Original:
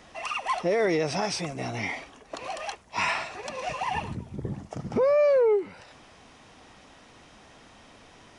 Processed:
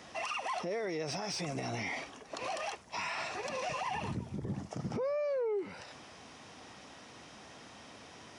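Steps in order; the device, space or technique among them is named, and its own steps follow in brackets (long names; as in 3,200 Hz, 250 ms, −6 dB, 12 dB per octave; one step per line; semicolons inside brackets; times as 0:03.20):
broadcast voice chain (high-pass filter 87 Hz; de-essing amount 70%; downward compressor, threshold −27 dBFS, peak gain reduction 8.5 dB; parametric band 5,400 Hz +4 dB 0.47 octaves; brickwall limiter −28.5 dBFS, peak gain reduction 9.5 dB)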